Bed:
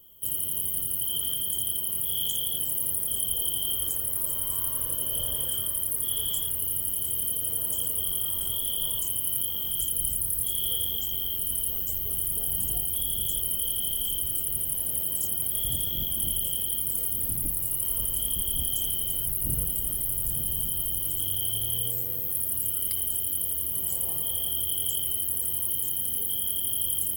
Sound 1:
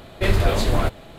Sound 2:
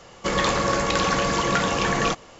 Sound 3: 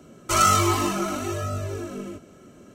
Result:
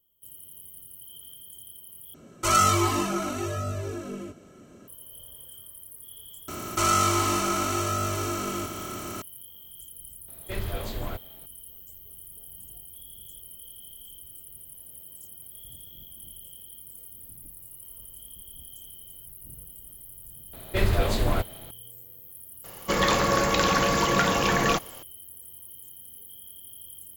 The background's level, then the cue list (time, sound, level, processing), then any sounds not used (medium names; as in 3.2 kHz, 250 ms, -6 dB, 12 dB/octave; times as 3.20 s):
bed -17 dB
2.14 s: replace with 3 -2 dB
6.48 s: add 3 -6.5 dB + spectral levelling over time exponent 0.4
10.28 s: add 1 -13.5 dB
20.53 s: add 1 -4.5 dB
22.64 s: add 2 -0.5 dB